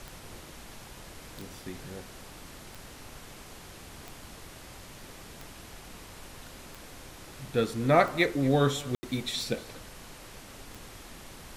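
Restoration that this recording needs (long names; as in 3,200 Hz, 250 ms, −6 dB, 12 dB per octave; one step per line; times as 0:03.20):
click removal
ambience match 0:08.95–0:09.03
noise reduction from a noise print 28 dB
echo removal 237 ms −21 dB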